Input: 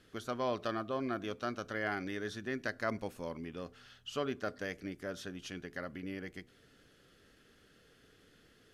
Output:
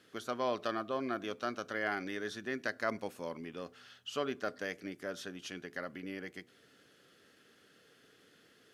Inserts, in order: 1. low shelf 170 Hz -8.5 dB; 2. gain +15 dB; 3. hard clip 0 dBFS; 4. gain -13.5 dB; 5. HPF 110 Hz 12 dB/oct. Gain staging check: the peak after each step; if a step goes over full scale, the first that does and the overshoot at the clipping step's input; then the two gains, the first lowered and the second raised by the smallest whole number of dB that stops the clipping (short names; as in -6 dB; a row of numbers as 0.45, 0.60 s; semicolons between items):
-20.0, -5.0, -5.0, -18.5, -18.0 dBFS; no overload